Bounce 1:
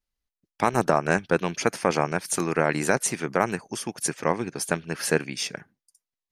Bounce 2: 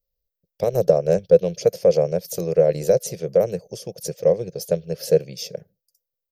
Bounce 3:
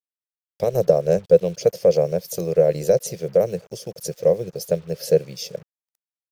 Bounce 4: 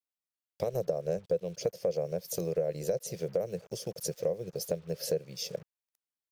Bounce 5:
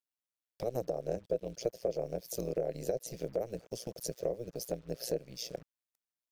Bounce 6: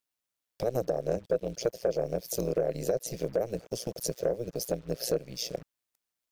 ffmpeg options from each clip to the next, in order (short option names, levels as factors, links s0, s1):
-af "firequalizer=gain_entry='entry(180,0);entry(250,-20);entry(510,11);entry(860,-20);entry(1300,-24);entry(3200,-11);entry(5000,-3);entry(9400,-16);entry(14000,9)':delay=0.05:min_phase=1,volume=1.5"
-af "acrusher=bits=7:mix=0:aa=0.5"
-af "acompressor=threshold=0.0447:ratio=3,volume=0.668"
-af "tremolo=f=120:d=0.824"
-af "asoftclip=type=tanh:threshold=0.0794,volume=2.11"